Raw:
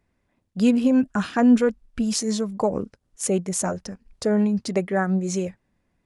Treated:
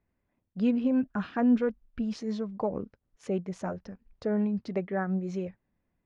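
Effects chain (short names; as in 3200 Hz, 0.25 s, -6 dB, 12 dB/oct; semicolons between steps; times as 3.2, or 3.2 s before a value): air absorption 260 m; gain -7 dB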